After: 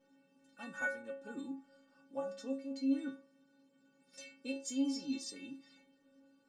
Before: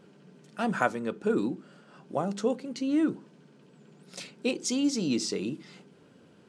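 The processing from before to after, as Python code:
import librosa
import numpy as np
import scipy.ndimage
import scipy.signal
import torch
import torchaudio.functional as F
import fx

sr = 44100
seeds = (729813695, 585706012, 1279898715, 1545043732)

y = fx.stiff_resonator(x, sr, f0_hz=270.0, decay_s=0.47, stiffness=0.008)
y = y * 10.0 ** (4.0 / 20.0)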